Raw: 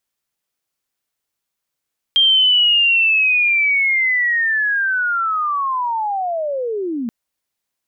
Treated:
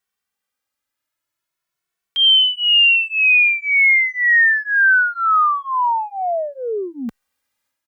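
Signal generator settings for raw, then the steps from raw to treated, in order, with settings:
sweep linear 3.2 kHz -> 220 Hz -9.5 dBFS -> -20 dBFS 4.93 s
peaking EQ 1.5 kHz +6.5 dB 1.5 oct; transient shaper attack -7 dB, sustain +6 dB; endless flanger 2.2 ms +0.44 Hz

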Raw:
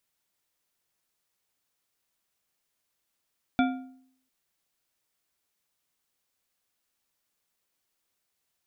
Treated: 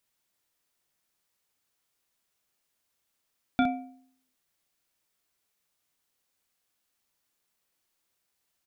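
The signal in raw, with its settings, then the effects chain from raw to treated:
metal hit bar, length 0.70 s, lowest mode 260 Hz, decay 0.66 s, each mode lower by 4 dB, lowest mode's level -19 dB
early reflections 32 ms -12 dB, 63 ms -7.5 dB

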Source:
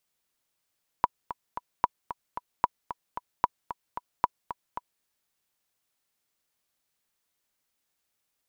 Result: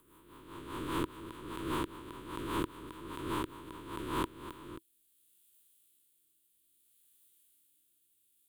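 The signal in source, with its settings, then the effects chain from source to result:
metronome 225 bpm, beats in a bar 3, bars 5, 978 Hz, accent 12.5 dB -7.5 dBFS
reverse spectral sustain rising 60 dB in 1.70 s; FFT filter 130 Hz 0 dB, 210 Hz -4 dB, 330 Hz +8 dB, 750 Hz -26 dB, 1.3 kHz -6 dB, 2 kHz -7 dB, 3.4 kHz +7 dB, 5.5 kHz -7 dB, 9 kHz +13 dB; rotary cabinet horn 5 Hz, later 0.6 Hz, at 3.91 s

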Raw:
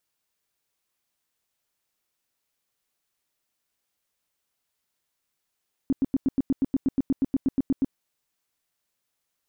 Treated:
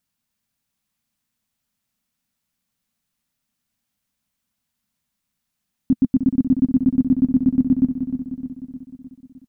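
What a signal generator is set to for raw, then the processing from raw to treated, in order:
tone bursts 269 Hz, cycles 7, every 0.12 s, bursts 17, -18 dBFS
resonant low shelf 290 Hz +7.5 dB, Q 3; on a send: feedback delay 306 ms, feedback 58%, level -8.5 dB

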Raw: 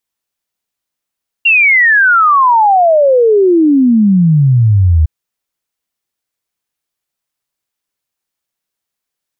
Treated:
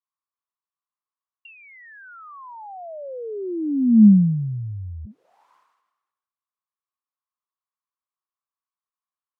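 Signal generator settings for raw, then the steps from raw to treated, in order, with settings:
log sweep 2.8 kHz -> 75 Hz 3.61 s -5 dBFS
auto-wah 210–1100 Hz, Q 8.4, down, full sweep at -9 dBFS; decay stretcher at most 51 dB/s

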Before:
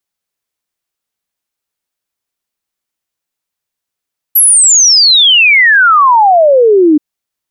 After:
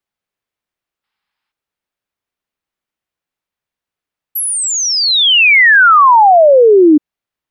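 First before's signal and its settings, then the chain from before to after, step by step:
log sweep 12 kHz -> 290 Hz 2.63 s -3 dBFS
time-frequency box 1.04–1.52 s, 760–5400 Hz +10 dB; tone controls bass +1 dB, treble -11 dB

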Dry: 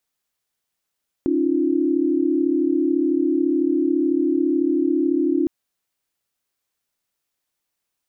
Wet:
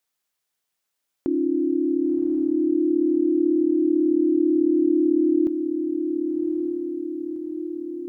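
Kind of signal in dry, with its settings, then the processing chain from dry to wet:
chord C#4/D#4/F4 sine, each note -21 dBFS 4.21 s
bass shelf 250 Hz -6.5 dB; echo that smears into a reverb 1089 ms, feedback 54%, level -6 dB

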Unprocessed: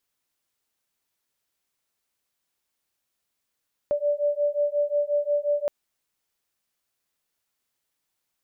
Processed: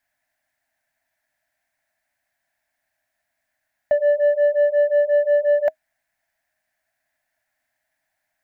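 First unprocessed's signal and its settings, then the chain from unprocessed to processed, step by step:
beating tones 581 Hz, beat 5.6 Hz, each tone -24.5 dBFS 1.77 s
in parallel at -7 dB: overload inside the chain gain 29 dB; on the sum: FFT filter 130 Hz 0 dB, 180 Hz -5 dB, 280 Hz 0 dB, 450 Hz -24 dB, 630 Hz +14 dB, 1.2 kHz -6 dB, 1.7 kHz +14 dB, 3 kHz -5 dB

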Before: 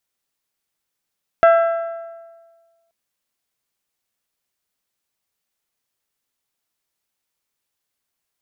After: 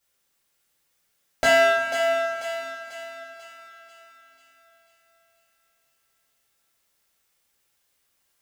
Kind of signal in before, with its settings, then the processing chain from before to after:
metal hit bell, length 1.48 s, lowest mode 669 Hz, modes 6, decay 1.50 s, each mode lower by 7 dB, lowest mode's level -7 dB
hard clipper -18 dBFS; on a send: thinning echo 491 ms, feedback 51%, high-pass 600 Hz, level -7 dB; on the sum: two-slope reverb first 0.36 s, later 4.3 s, from -20 dB, DRR -7 dB

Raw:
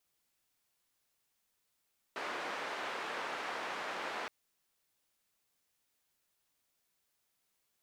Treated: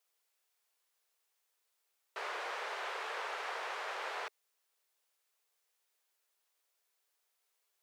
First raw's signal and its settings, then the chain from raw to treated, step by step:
noise band 390–1700 Hz, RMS -40 dBFS 2.12 s
Chebyshev high-pass 410 Hz, order 4

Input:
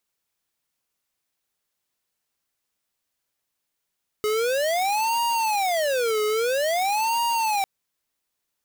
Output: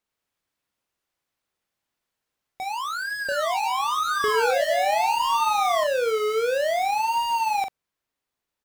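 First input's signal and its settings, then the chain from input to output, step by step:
siren wail 424–940 Hz 0.5 per s square -23 dBFS 3.40 s
treble shelf 3.9 kHz -10.5 dB; doubling 43 ms -7.5 dB; ever faster or slower copies 110 ms, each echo +5 st, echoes 2

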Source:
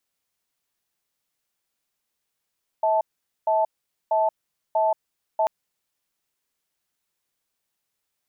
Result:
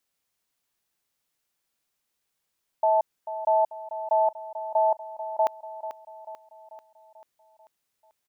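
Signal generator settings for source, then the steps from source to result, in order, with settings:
cadence 645 Hz, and 876 Hz, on 0.18 s, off 0.46 s, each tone -20.5 dBFS 2.64 s
feedback delay 440 ms, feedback 53%, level -12 dB

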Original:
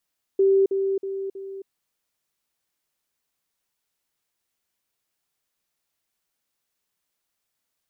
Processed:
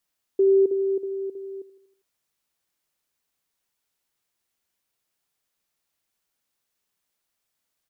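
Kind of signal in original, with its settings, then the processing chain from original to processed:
level ladder 389 Hz -14.5 dBFS, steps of -6 dB, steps 4, 0.27 s 0.05 s
feedback delay 80 ms, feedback 55%, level -17 dB

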